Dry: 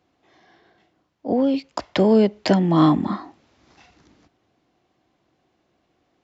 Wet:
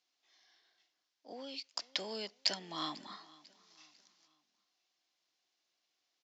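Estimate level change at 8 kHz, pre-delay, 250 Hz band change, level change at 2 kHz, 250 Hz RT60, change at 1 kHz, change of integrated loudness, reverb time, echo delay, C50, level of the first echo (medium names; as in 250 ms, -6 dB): no reading, no reverb, -31.5 dB, -13.0 dB, no reverb, -20.0 dB, -19.5 dB, no reverb, 496 ms, no reverb, -22.0 dB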